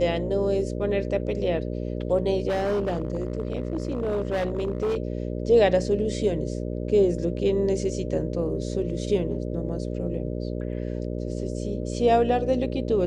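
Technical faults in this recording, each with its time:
mains buzz 60 Hz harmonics 10 −30 dBFS
0:02.49–0:04.97: clipping −21.5 dBFS

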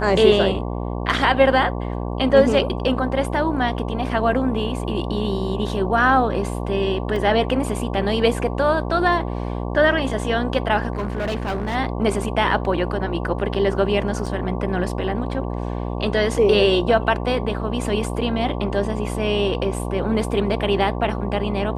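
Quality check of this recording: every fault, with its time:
mains buzz 60 Hz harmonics 19 −26 dBFS
0:07.16: drop-out 2.7 ms
0:10.93–0:11.76: clipping −20 dBFS
0:14.26: drop-out 4.4 ms

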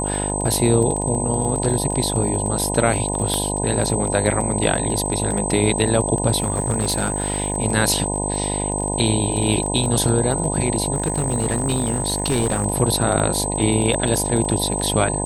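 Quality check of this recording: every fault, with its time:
mains buzz 50 Hz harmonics 20 −25 dBFS
surface crackle 26 per second −25 dBFS
whistle 8,200 Hz −25 dBFS
0:03.34: click −9 dBFS
0:06.40–0:07.58: clipping −14 dBFS
0:10.94–0:12.66: clipping −14.5 dBFS

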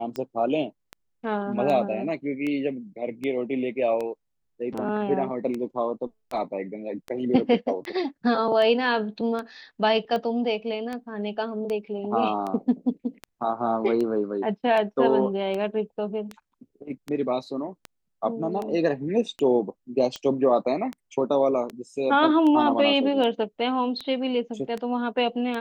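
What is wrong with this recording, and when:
scratch tick 78 rpm −19 dBFS

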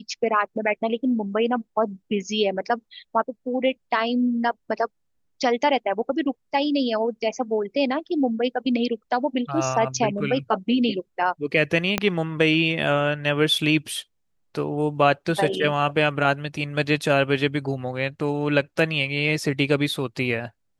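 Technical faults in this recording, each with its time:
0:11.98: click −6 dBFS

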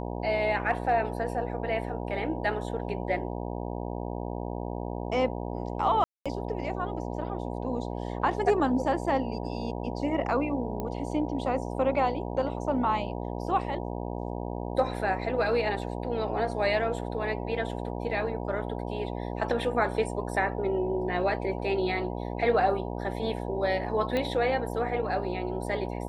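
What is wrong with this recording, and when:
mains buzz 60 Hz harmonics 16 −34 dBFS
0:06.04–0:06.26: drop-out 216 ms
0:10.80: click −20 dBFS
0:24.17: click −17 dBFS

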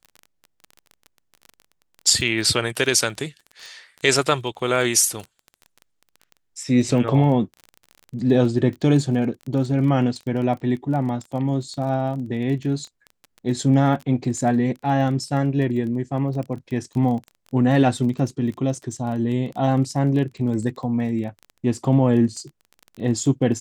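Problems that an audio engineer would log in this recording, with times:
surface crackle 21 per second −30 dBFS

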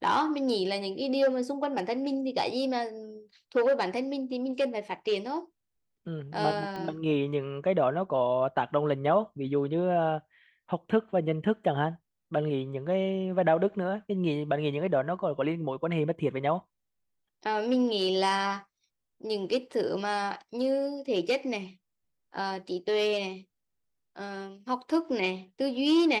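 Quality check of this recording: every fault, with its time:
0:06.76: click −25 dBFS

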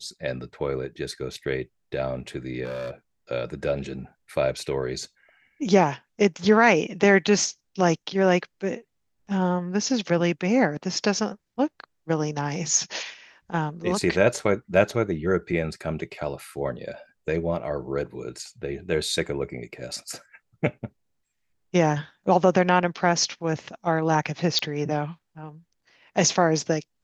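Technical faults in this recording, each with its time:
0:02.64–0:02.91: clipping −28.5 dBFS
0:24.59: click −12 dBFS

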